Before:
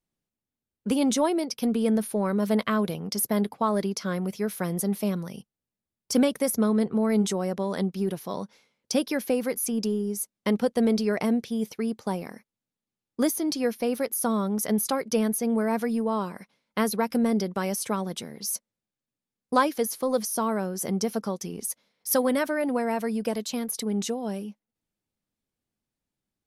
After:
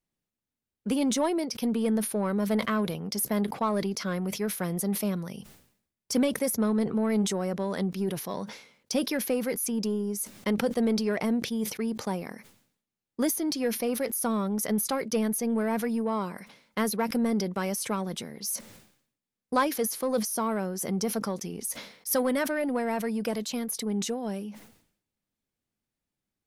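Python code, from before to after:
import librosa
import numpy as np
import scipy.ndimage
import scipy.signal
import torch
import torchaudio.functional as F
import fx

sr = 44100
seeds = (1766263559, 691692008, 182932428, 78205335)

p1 = fx.peak_eq(x, sr, hz=2000.0, db=2.0, octaves=0.77)
p2 = 10.0 ** (-24.5 / 20.0) * np.tanh(p1 / 10.0 ** (-24.5 / 20.0))
p3 = p1 + (p2 * 10.0 ** (-3.5 / 20.0))
p4 = fx.sustainer(p3, sr, db_per_s=94.0)
y = p4 * 10.0 ** (-5.5 / 20.0)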